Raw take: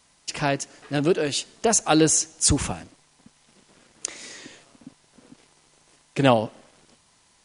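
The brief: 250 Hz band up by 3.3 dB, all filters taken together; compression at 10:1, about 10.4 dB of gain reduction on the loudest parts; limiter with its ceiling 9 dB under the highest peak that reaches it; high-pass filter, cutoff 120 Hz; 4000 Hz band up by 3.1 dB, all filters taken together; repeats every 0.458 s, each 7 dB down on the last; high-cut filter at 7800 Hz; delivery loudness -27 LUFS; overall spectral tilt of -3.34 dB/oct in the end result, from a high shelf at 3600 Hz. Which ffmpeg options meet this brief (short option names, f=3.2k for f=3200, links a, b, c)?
-af "highpass=120,lowpass=7.8k,equalizer=f=250:t=o:g=4.5,highshelf=f=3.6k:g=-4.5,equalizer=f=4k:t=o:g=7.5,acompressor=threshold=-22dB:ratio=10,alimiter=limit=-17.5dB:level=0:latency=1,aecho=1:1:458|916|1374|1832|2290:0.447|0.201|0.0905|0.0407|0.0183,volume=4dB"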